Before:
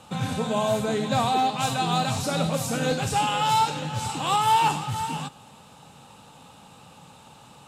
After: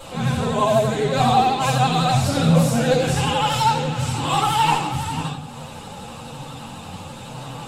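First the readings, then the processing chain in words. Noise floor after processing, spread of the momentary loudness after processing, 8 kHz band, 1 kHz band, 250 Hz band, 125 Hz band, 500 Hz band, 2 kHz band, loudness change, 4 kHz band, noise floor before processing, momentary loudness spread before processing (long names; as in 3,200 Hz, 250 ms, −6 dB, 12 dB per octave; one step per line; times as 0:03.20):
−36 dBFS, 18 LU, +3.0 dB, +3.5 dB, +7.0 dB, +9.0 dB, +6.5 dB, +5.0 dB, +5.0 dB, +4.0 dB, −50 dBFS, 8 LU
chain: upward compression, threshold −31 dBFS
multi-voice chorus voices 4, 0.49 Hz, delay 11 ms, depth 3.4 ms
rectangular room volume 110 cubic metres, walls mixed, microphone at 4.7 metres
pitch vibrato 12 Hz 64 cents
level −7 dB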